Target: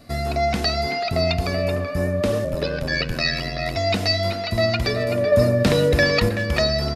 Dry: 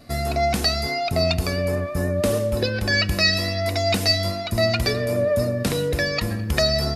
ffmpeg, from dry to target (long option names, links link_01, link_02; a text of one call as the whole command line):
ffmpeg -i in.wav -filter_complex "[0:a]acrossover=split=5700[link_01][link_02];[link_02]acompressor=threshold=-45dB:ratio=4:attack=1:release=60[link_03];[link_01][link_03]amix=inputs=2:normalize=0,asettb=1/sr,asplit=3[link_04][link_05][link_06];[link_04]atrim=end=2.444[link_07];[link_05]atrim=start=2.44:end=3.77,asetpts=PTS-STARTPTS,afade=type=in:duration=0.004:curve=qsin,afade=type=out:start_time=1.326:duration=0.004:curve=qsin,aeval=exprs='val(0)*sin(2*PI*41*n/s)':channel_layout=same[link_08];[link_06]atrim=start=3.766[link_09];[link_07][link_08]acrossfade=duration=0.004:curve1=hsin:curve2=qsin[link_10];[link_10][link_09]acrossfade=duration=0.004:curve1=qsin:curve2=hsin,asettb=1/sr,asplit=3[link_11][link_12][link_13];[link_11]atrim=end=5.324[link_14];[link_12]atrim=start=5.32:end=6.29,asetpts=PTS-STARTPTS,afade=type=in:duration=0.004:curve=qsin,afade=type=out:start_time=0.966:duration=0.004:curve=qsin,acontrast=36[link_15];[link_13]atrim=start=6.286[link_16];[link_14][link_15]acrossfade=duration=0.004:curve1=hsin:curve2=qsin[link_17];[link_17][link_16]acrossfade=duration=0.004:curve1=qsin:curve2=hsin,asplit=2[link_18][link_19];[link_19]adelay=380,highpass=300,lowpass=3400,asoftclip=type=hard:threshold=-15dB,volume=-7dB[link_20];[link_18][link_20]amix=inputs=2:normalize=0" out.wav